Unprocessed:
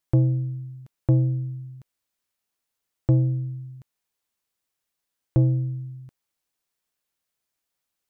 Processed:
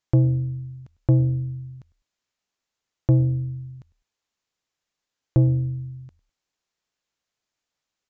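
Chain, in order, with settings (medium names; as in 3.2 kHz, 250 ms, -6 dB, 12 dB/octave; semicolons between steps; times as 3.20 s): on a send: frequency-shifting echo 101 ms, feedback 33%, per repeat -47 Hz, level -23 dB; on the sum: resampled via 16 kHz; trim +1.5 dB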